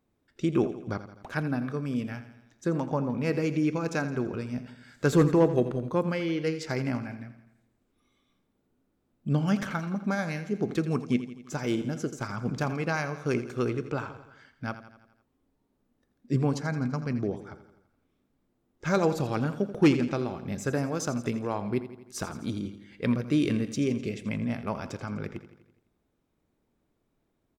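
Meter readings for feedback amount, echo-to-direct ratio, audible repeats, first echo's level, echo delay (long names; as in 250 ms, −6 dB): 57%, −11.5 dB, 5, −13.0 dB, 84 ms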